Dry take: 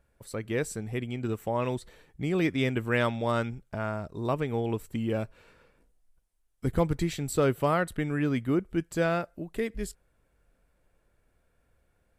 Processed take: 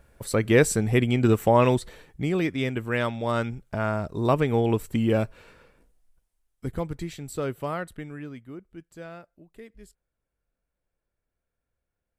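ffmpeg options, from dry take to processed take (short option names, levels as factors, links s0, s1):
-af "volume=8.41,afade=t=out:st=1.44:d=1.02:silence=0.266073,afade=t=in:st=3.16:d=0.95:silence=0.446684,afade=t=out:st=5.2:d=1.62:silence=0.251189,afade=t=out:st=7.79:d=0.63:silence=0.334965"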